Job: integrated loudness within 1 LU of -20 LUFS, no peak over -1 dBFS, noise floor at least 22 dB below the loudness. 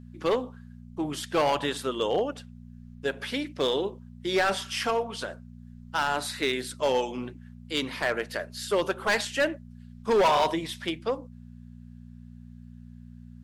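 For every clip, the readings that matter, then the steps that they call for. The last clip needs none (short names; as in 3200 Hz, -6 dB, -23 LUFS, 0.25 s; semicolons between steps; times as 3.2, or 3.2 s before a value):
clipped 1.1%; flat tops at -18.0 dBFS; hum 60 Hz; harmonics up to 240 Hz; hum level -44 dBFS; loudness -28.5 LUFS; peak -18.0 dBFS; loudness target -20.0 LUFS
-> clip repair -18 dBFS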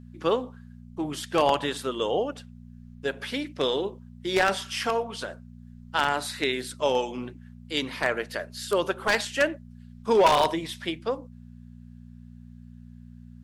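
clipped 0.0%; hum 60 Hz; harmonics up to 240 Hz; hum level -44 dBFS
-> de-hum 60 Hz, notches 4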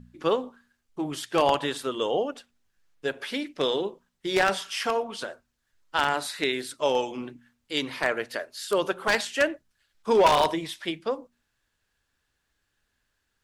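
hum none; loudness -27.0 LUFS; peak -9.0 dBFS; loudness target -20.0 LUFS
-> gain +7 dB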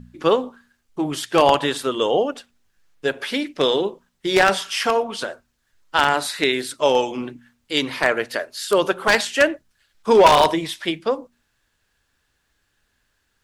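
loudness -20.0 LUFS; peak -2.0 dBFS; noise floor -70 dBFS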